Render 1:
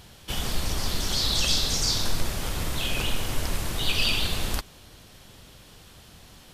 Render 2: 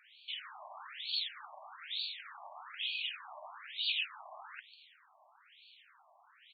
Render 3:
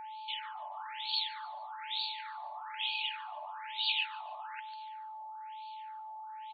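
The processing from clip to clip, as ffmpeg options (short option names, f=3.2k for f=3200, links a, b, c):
-filter_complex "[0:a]acrossover=split=180|3000[a][b][c];[b]acompressor=threshold=-45dB:ratio=1.5[d];[a][d][c]amix=inputs=3:normalize=0,asplit=2[e][f];[f]adelay=145.8,volume=-16dB,highshelf=f=4k:g=-3.28[g];[e][g]amix=inputs=2:normalize=0,afftfilt=real='re*between(b*sr/1024,810*pow(3300/810,0.5+0.5*sin(2*PI*1.1*pts/sr))/1.41,810*pow(3300/810,0.5+0.5*sin(2*PI*1.1*pts/sr))*1.41)':imag='im*between(b*sr/1024,810*pow(3300/810,0.5+0.5*sin(2*PI*1.1*pts/sr))/1.41,810*pow(3300/810,0.5+0.5*sin(2*PI*1.1*pts/sr))*1.41)':win_size=1024:overlap=0.75,volume=-3dB"
-af "aeval=exprs='val(0)+0.00631*sin(2*PI*870*n/s)':c=same,aecho=1:1:144|288|432:0.0794|0.0342|0.0147,volume=2dB"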